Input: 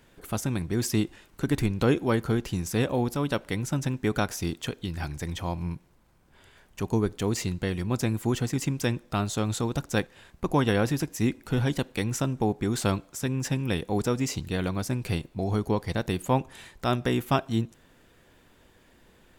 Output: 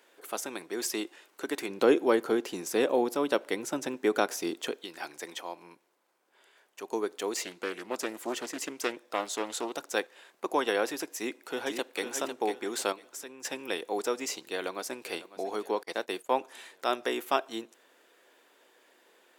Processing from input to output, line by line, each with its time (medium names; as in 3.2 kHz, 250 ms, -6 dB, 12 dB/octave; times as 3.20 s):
1.68–4.77 s: bass shelf 430 Hz +11 dB
5.41–6.92 s: gain -4 dB
7.43–9.73 s: loudspeaker Doppler distortion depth 0.44 ms
11.16–12.05 s: echo throw 500 ms, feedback 30%, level -7 dB
12.92–13.45 s: compression 2:1, threshold -38 dBFS
14.36–15.08 s: echo throw 550 ms, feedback 55%, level -16 dB
15.83–16.40 s: expander -31 dBFS
whole clip: high-pass 360 Hz 24 dB/octave; trim -1 dB